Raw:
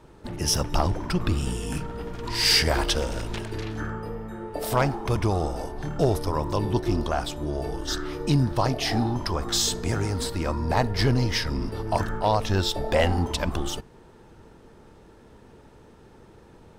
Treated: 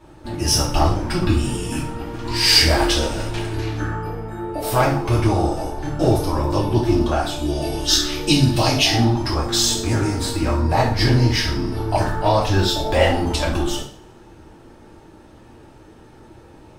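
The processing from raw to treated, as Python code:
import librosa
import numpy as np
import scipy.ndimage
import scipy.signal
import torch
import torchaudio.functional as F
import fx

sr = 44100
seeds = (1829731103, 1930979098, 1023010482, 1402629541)

y = fx.high_shelf_res(x, sr, hz=2000.0, db=8.5, q=1.5, at=(7.36, 8.84))
y = fx.rev_double_slope(y, sr, seeds[0], early_s=0.46, late_s=1.6, knee_db=-27, drr_db=-6.5)
y = y * 10.0 ** (-1.5 / 20.0)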